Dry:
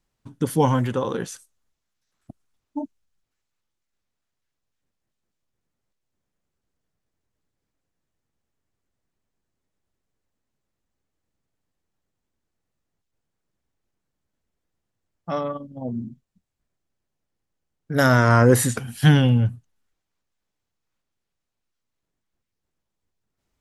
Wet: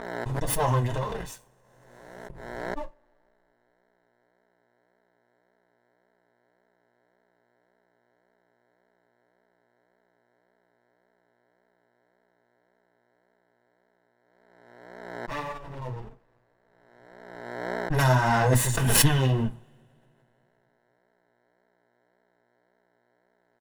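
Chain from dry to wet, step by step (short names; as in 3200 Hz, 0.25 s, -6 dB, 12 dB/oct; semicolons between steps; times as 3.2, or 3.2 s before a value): minimum comb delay 2 ms; notch 4600 Hz, Q 27; comb 1.1 ms, depth 45%; buzz 60 Hz, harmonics 15, -57 dBFS -1 dB/oct; crossover distortion -49.5 dBFS; flange 1.8 Hz, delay 4.2 ms, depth 4.6 ms, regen +5%; on a send at -8.5 dB: reverb, pre-delay 3 ms; on the sum: backwards sustainer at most 34 dB/s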